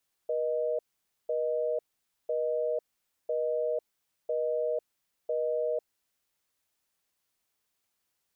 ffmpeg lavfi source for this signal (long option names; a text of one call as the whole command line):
ffmpeg -f lavfi -i "aevalsrc='0.0335*(sin(2*PI*480*t)+sin(2*PI*620*t))*clip(min(mod(t,1),0.5-mod(t,1))/0.005,0,1)':duration=5.91:sample_rate=44100" out.wav